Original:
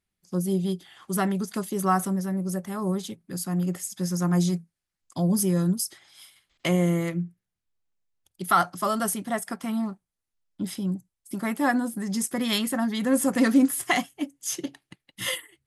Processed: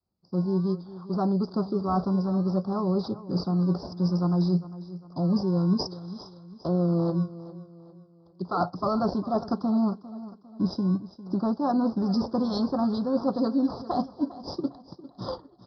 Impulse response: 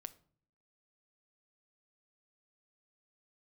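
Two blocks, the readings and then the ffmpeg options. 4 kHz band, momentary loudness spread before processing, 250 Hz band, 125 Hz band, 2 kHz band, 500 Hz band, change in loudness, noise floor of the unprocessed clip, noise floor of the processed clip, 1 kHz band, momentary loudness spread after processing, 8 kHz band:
-7.0 dB, 11 LU, +0.5 dB, +1.0 dB, under -15 dB, +1.0 dB, -1.0 dB, -85 dBFS, -56 dBFS, -2.5 dB, 14 LU, under -25 dB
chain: -filter_complex "[0:a]asplit=2[a][b];[b]acrusher=samples=27:mix=1:aa=0.000001:lfo=1:lforange=16.2:lforate=0.58,volume=-10dB[c];[a][c]amix=inputs=2:normalize=0,aresample=11025,aresample=44100,dynaudnorm=f=410:g=13:m=8dB,adynamicequalizer=threshold=0.0355:dfrequency=220:dqfactor=1.1:tfrequency=220:tqfactor=1.1:attack=5:release=100:ratio=0.375:range=2.5:mode=cutabove:tftype=bell,highpass=58,areverse,acompressor=threshold=-23dB:ratio=10,areverse,asuperstop=centerf=2400:order=8:qfactor=0.72,aecho=1:1:402|804|1206|1608:0.158|0.0634|0.0254|0.0101,volume=2dB"

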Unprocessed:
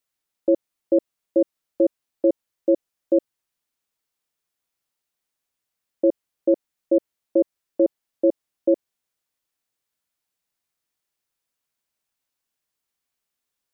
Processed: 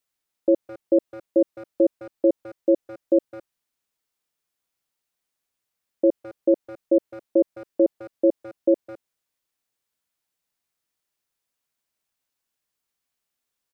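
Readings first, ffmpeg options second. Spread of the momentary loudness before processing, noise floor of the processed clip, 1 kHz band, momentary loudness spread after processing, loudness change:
2 LU, -83 dBFS, n/a, 2 LU, 0.0 dB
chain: -filter_complex "[0:a]asplit=2[a][b];[b]adelay=210,highpass=300,lowpass=3.4k,asoftclip=type=hard:threshold=-18.5dB,volume=-16dB[c];[a][c]amix=inputs=2:normalize=0"

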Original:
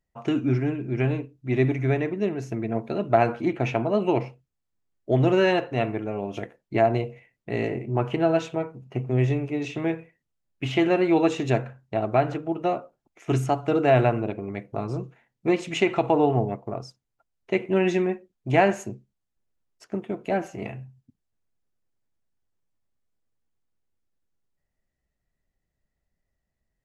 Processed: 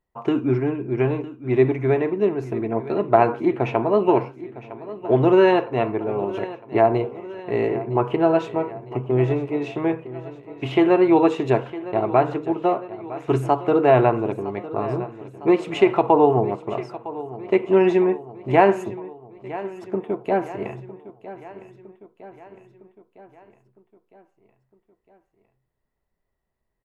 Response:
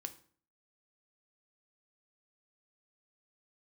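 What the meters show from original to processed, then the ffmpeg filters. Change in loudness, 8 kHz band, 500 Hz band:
+4.0 dB, n/a, +5.5 dB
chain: -filter_complex "[0:a]equalizer=f=400:t=o:w=0.67:g=8,equalizer=f=1k:t=o:w=0.67:g=11,equalizer=f=6.3k:t=o:w=0.67:g=-8,asplit=2[a][b];[b]aecho=0:1:958|1916|2874|3832|4790:0.158|0.0888|0.0497|0.0278|0.0156[c];[a][c]amix=inputs=2:normalize=0,volume=-1dB"

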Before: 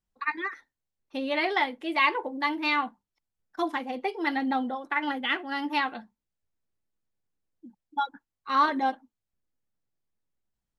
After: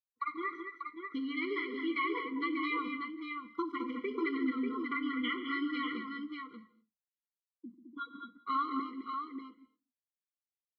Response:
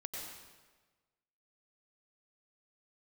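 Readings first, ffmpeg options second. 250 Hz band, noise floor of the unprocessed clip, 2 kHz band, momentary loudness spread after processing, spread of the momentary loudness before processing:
-2.0 dB, under -85 dBFS, -8.5 dB, 12 LU, 12 LU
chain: -filter_complex "[0:a]lowpass=2.8k,agate=range=-33dB:threshold=-51dB:ratio=3:detection=peak,highpass=69,acompressor=threshold=-30dB:ratio=6,aecho=1:1:95|140|211|214|590:0.106|0.2|0.133|0.398|0.501,asplit=2[a][b];[1:a]atrim=start_sample=2205,afade=t=out:st=0.26:d=0.01,atrim=end_sample=11907,adelay=54[c];[b][c]afir=irnorm=-1:irlink=0,volume=-15dB[d];[a][d]amix=inputs=2:normalize=0,afftfilt=real='re*eq(mod(floor(b*sr/1024/480),2),0)':imag='im*eq(mod(floor(b*sr/1024/480),2),0)':win_size=1024:overlap=0.75"

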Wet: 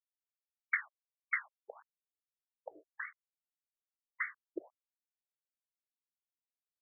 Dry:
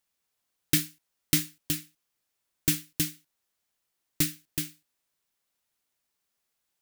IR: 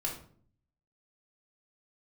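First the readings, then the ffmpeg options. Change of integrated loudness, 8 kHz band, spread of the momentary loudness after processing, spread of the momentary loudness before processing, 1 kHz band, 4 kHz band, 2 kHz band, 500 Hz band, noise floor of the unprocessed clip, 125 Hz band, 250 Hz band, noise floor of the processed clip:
-10.5 dB, under -40 dB, 20 LU, 8 LU, +5.0 dB, under -40 dB, +2.5 dB, -4.0 dB, -81 dBFS, under -40 dB, -22.0 dB, under -85 dBFS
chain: -af "aeval=exprs='val(0)*gte(abs(val(0)),0.01)':c=same,lowshelf=f=220:g=10.5,afftfilt=real='re*between(b*sr/1024,470*pow(1600/470,0.5+0.5*sin(2*PI*1.7*pts/sr))/1.41,470*pow(1600/470,0.5+0.5*sin(2*PI*1.7*pts/sr))*1.41)':imag='im*between(b*sr/1024,470*pow(1600/470,0.5+0.5*sin(2*PI*1.7*pts/sr))/1.41,470*pow(1600/470,0.5+0.5*sin(2*PI*1.7*pts/sr))*1.41)':win_size=1024:overlap=0.75,volume=6.5dB"

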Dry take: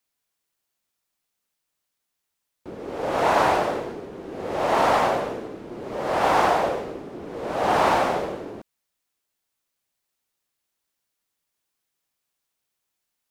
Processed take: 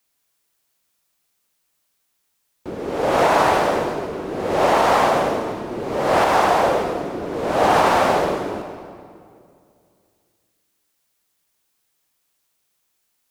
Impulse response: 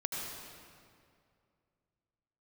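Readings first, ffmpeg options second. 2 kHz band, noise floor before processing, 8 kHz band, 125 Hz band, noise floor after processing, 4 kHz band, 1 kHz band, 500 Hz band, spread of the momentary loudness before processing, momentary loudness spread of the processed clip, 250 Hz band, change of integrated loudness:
+4.5 dB, -81 dBFS, +6.5 dB, +5.5 dB, -71 dBFS, +5.0 dB, +4.5 dB, +5.5 dB, 17 LU, 12 LU, +6.0 dB, +3.5 dB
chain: -filter_complex "[0:a]alimiter=limit=-13.5dB:level=0:latency=1:release=253,asplit=2[a][b];[1:a]atrim=start_sample=2205,highshelf=f=4.9k:g=7.5[c];[b][c]afir=irnorm=-1:irlink=0,volume=-7dB[d];[a][d]amix=inputs=2:normalize=0,volume=4dB"

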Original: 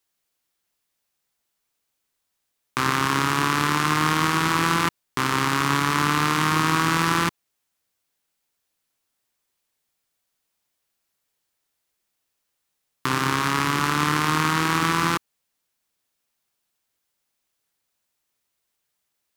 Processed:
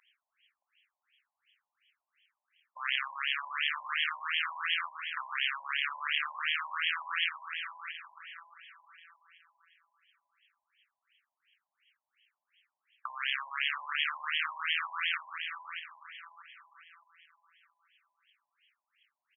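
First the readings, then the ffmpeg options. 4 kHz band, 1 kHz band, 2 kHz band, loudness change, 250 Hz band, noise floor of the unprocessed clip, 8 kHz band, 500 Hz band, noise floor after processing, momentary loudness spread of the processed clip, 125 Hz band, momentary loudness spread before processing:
-5.5 dB, -16.5 dB, -7.5 dB, -11.0 dB, under -40 dB, -78 dBFS, under -40 dB, under -35 dB, under -85 dBFS, 15 LU, under -40 dB, 5 LU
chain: -filter_complex "[0:a]aderivative,crystalizer=i=6:c=0,acompressor=mode=upward:threshold=-26dB:ratio=2.5,lowpass=8.1k,agate=range=-13dB:threshold=-53dB:ratio=16:detection=peak,asplit=2[a][b];[b]aecho=0:1:418|836|1254|1672|2090:0.126|0.0692|0.0381|0.0209|0.0115[c];[a][c]amix=inputs=2:normalize=0,acompressor=threshold=-24dB:ratio=2,highshelf=f=2.7k:g=11,asplit=2[d][e];[e]adelay=624,lowpass=f=2.3k:p=1,volume=-6dB,asplit=2[f][g];[g]adelay=624,lowpass=f=2.3k:p=1,volume=0.38,asplit=2[h][i];[i]adelay=624,lowpass=f=2.3k:p=1,volume=0.38,asplit=2[j][k];[k]adelay=624,lowpass=f=2.3k:p=1,volume=0.38,asplit=2[l][m];[m]adelay=624,lowpass=f=2.3k:p=1,volume=0.38[n];[f][h][j][l][n]amix=inputs=5:normalize=0[o];[d][o]amix=inputs=2:normalize=0,afftfilt=real='re*between(b*sr/1024,750*pow(2400/750,0.5+0.5*sin(2*PI*2.8*pts/sr))/1.41,750*pow(2400/750,0.5+0.5*sin(2*PI*2.8*pts/sr))*1.41)':imag='im*between(b*sr/1024,750*pow(2400/750,0.5+0.5*sin(2*PI*2.8*pts/sr))/1.41,750*pow(2400/750,0.5+0.5*sin(2*PI*2.8*pts/sr))*1.41)':win_size=1024:overlap=0.75,volume=2.5dB"

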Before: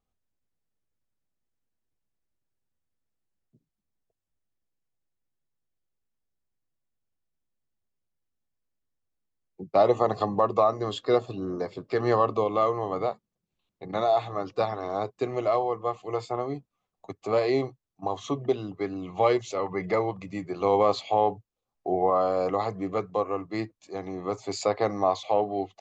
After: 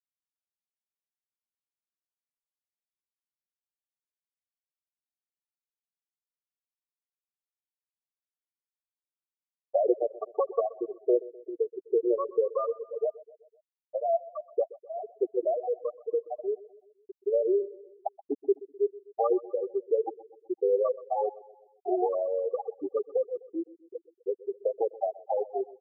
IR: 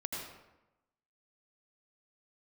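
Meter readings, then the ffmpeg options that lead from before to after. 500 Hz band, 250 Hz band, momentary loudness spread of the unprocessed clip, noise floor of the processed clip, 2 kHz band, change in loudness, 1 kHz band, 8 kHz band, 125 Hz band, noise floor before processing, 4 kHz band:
-2.0 dB, -5.5 dB, 11 LU, under -85 dBFS, under -40 dB, -3.5 dB, -9.0 dB, n/a, under -40 dB, -85 dBFS, under -40 dB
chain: -filter_complex "[0:a]highpass=f=63:w=0.5412,highpass=f=63:w=1.3066,lowshelf=f=290:t=q:w=1.5:g=-7,flanger=delay=1.5:depth=3.9:regen=77:speed=0.72:shape=triangular,equalizer=f=82:w=0.62:g=-12,acrossover=split=340[a][b];[b]acompressor=threshold=-34dB:ratio=5[c];[a][c]amix=inputs=2:normalize=0,afftfilt=real='re*gte(hypot(re,im),0.112)':imag='im*gte(hypot(re,im),0.112)':win_size=1024:overlap=0.75,aecho=1:1:127|254|381|508:0.106|0.0551|0.0286|0.0149,volume=9dB"

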